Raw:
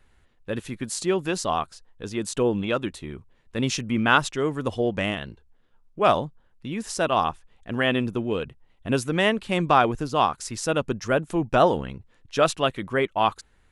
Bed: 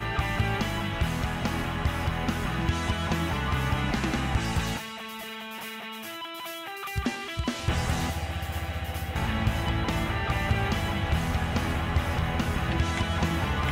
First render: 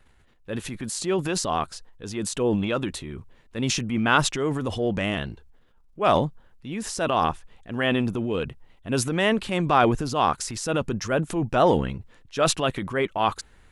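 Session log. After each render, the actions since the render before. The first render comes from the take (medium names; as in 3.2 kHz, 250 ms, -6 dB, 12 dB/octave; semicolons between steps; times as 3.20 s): transient shaper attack -4 dB, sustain +7 dB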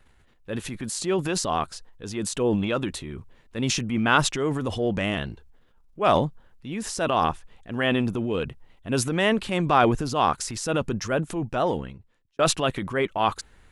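10.99–12.39 s: fade out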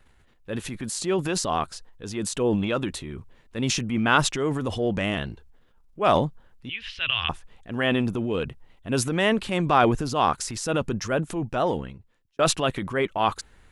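6.69–7.29 s: FFT filter 110 Hz 0 dB, 180 Hz -24 dB, 730 Hz -21 dB, 3 kHz +14 dB, 7.8 kHz -30 dB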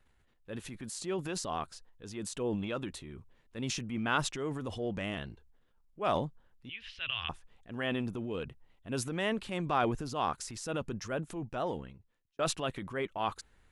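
trim -10.5 dB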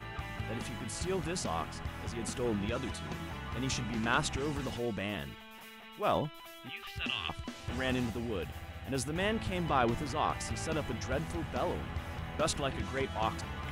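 add bed -13 dB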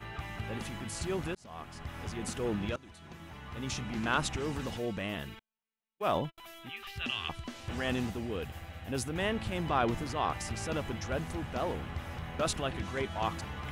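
1.35–2.00 s: fade in; 2.76–4.07 s: fade in, from -19.5 dB; 5.39–6.38 s: gate -43 dBFS, range -47 dB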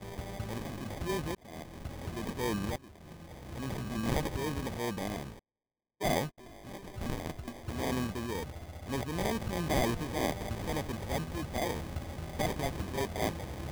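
sample-and-hold 32×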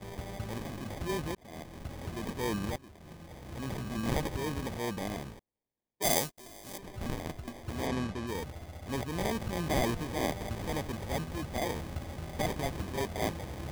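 6.02–6.78 s: tone controls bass -5 dB, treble +13 dB; 7.87–8.27 s: distance through air 51 m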